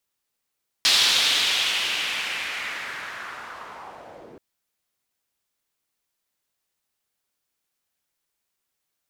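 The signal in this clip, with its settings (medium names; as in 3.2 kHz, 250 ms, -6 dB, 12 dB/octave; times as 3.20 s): swept filtered noise pink, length 3.53 s bandpass, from 4 kHz, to 360 Hz, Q 2.3, linear, gain ramp -28 dB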